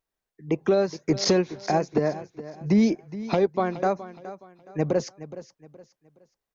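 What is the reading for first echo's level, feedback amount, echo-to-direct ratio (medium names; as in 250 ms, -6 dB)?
-15.0 dB, 33%, -14.5 dB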